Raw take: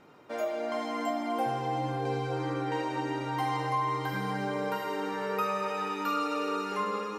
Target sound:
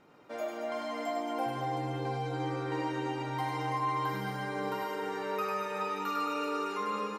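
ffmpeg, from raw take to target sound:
-af "aecho=1:1:100|225|381.2|576.6|820.7:0.631|0.398|0.251|0.158|0.1,volume=-4.5dB"

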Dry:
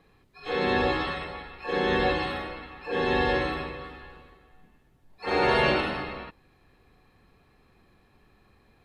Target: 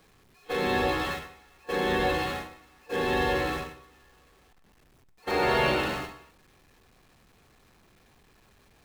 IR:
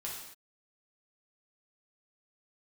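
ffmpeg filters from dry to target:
-filter_complex "[0:a]aeval=exprs='val(0)+0.5*0.0251*sgn(val(0))':c=same,agate=range=-20dB:threshold=-29dB:ratio=16:detection=peak,asplit=2[a][b];[1:a]atrim=start_sample=2205,atrim=end_sample=4410,adelay=108[c];[b][c]afir=irnorm=-1:irlink=0,volume=-15dB[d];[a][d]amix=inputs=2:normalize=0,volume=-3dB"

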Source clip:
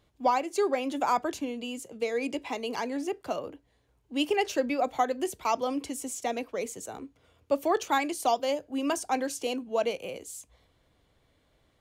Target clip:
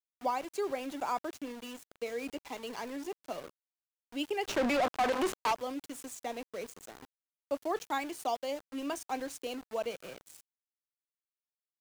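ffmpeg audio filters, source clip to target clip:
-filter_complex "[0:a]aeval=exprs='val(0)*gte(abs(val(0)),0.015)':c=same,asplit=3[a][b][c];[a]afade=t=out:st=4.47:d=0.02[d];[b]asplit=2[e][f];[f]highpass=f=720:p=1,volume=34dB,asoftclip=type=tanh:threshold=-14dB[g];[e][g]amix=inputs=2:normalize=0,lowpass=f=2.6k:p=1,volume=-6dB,afade=t=in:st=4.47:d=0.02,afade=t=out:st=5.52:d=0.02[h];[c]afade=t=in:st=5.52:d=0.02[i];[d][h][i]amix=inputs=3:normalize=0,volume=-7.5dB"

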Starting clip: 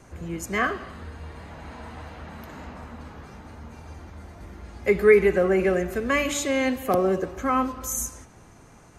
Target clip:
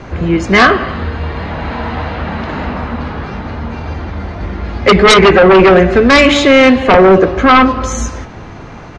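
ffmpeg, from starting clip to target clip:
-filter_complex "[0:a]lowpass=f=4.4k:w=0.5412,lowpass=f=4.4k:w=1.3066,asplit=2[a][b];[b]adelay=21,volume=-14dB[c];[a][c]amix=inputs=2:normalize=0,aeval=exprs='0.631*sin(PI/2*5.01*val(0)/0.631)':c=same,volume=2.5dB"

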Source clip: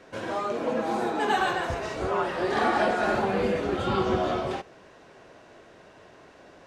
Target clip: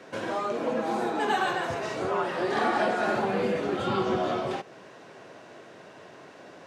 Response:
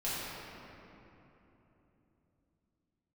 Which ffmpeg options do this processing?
-filter_complex "[0:a]highpass=f=110:w=0.5412,highpass=f=110:w=1.3066,asplit=2[a][b];[b]acompressor=threshold=-36dB:ratio=6,volume=2dB[c];[a][c]amix=inputs=2:normalize=0,volume=-3.5dB"

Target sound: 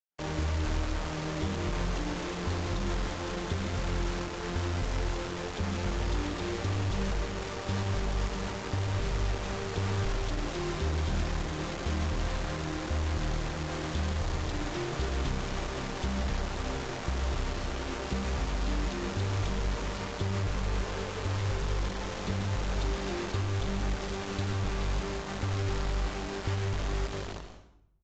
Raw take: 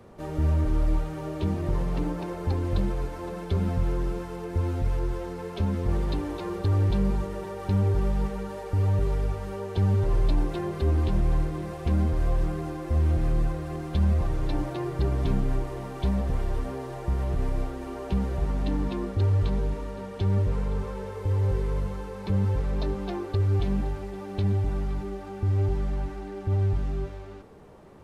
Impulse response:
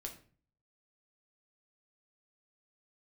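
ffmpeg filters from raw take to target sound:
-filter_complex "[0:a]equalizer=f=3.4k:t=o:w=0.41:g=6,acrossover=split=360|780[a][b][c];[a]acompressor=threshold=-31dB:ratio=4[d];[b]acompressor=threshold=-45dB:ratio=4[e];[c]acompressor=threshold=-47dB:ratio=4[f];[d][e][f]amix=inputs=3:normalize=0,asettb=1/sr,asplit=3[g][h][i];[g]atrim=end=8.284[j];[h]atrim=start=8.28:end=9.78,asetpts=PTS-STARTPTS,afade=t=in:d=0.004:c=qsin,afade=t=out:st=1.496:d=0.004:c=qsin,aeval=exprs='val(0)+0.00447*(sin(2*PI*60*n/s)+sin(2*PI*2*60*n/s)/2+sin(2*PI*3*60*n/s)/3+sin(2*PI*4*60*n/s)/4+sin(2*PI*5*60*n/s)/5)':c=same[k];[i]atrim=start=9.776[l];[j][k]acrossfade=d=0.004:c1=hsin:c2=qsin[m];[m][l]acrossfade=d=0.004:c1=qsin:c2=hsin,acrusher=bits=5:mix=0:aa=0.000001,asplit=4[n][o][p][q];[o]adelay=91,afreqshift=-110,volume=-15dB[r];[p]adelay=182,afreqshift=-220,volume=-23.6dB[s];[q]adelay=273,afreqshift=-330,volume=-32.3dB[t];[n][r][s][t]amix=inputs=4:normalize=0,asplit=2[u][v];[1:a]atrim=start_sample=2205,asetrate=23814,aresample=44100,adelay=140[w];[v][w]afir=irnorm=-1:irlink=0,volume=-9dB[x];[u][x]amix=inputs=2:normalize=0" -ar 16000 -c:a aac -b:a 32k

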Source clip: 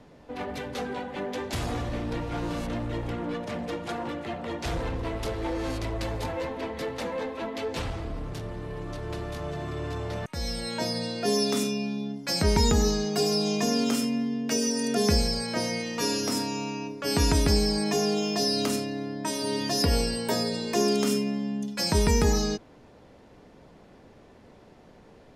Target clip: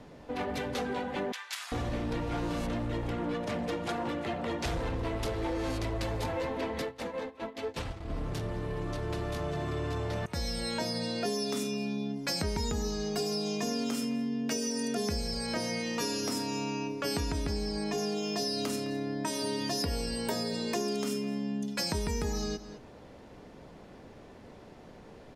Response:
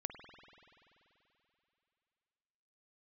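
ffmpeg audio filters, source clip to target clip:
-filter_complex "[0:a]asplit=2[a][b];[b]adelay=209.9,volume=-20dB,highshelf=f=4k:g=-4.72[c];[a][c]amix=inputs=2:normalize=0,acompressor=threshold=-32dB:ratio=5,asettb=1/sr,asplit=3[d][e][f];[d]atrim=end=1.324[g];[e]atrim=start=1.32:end=1.72,asetpts=PTS-STARTPTS,afade=t=in:d=0.004:c=qsin,afade=t=out:st=0.396:d=0.004:c=qsin,highpass=f=1.2k:w=0.5412,highpass=f=1.2k:w=1.3066[h];[f]atrim=start=1.716[i];[g][h]acrossfade=d=0.004:c1=hsin:c2=qsin[j];[j][i]acrossfade=d=0.004:c1=qsin:c2=hsin,asplit=3[k][l][m];[k]afade=t=out:st=6.81:d=0.02[n];[l]agate=range=-18dB:threshold=-34dB:ratio=16:detection=peak,afade=t=in:st=6.81:d=0.02,afade=t=out:st=8.08:d=0.02[o];[m]afade=t=in:st=8.08:d=0.02[p];[n][o][p]amix=inputs=3:normalize=0,asettb=1/sr,asplit=3[q][r][s];[q]atrim=end=17.204[t];[r]atrim=start=17.2:end=17.98,asetpts=PTS-STARTPTS,afade=t=in:d=0.004:c=qsin,afade=t=out:st=0.776:d=0.004:c=qsin,highshelf=f=7.4k:g=-9[u];[s]atrim=start=17.976[v];[t][u]acrossfade=d=0.004:c1=hsin:c2=qsin[w];[w][v]acrossfade=d=0.004:c1=qsin:c2=hsin,volume=2dB"

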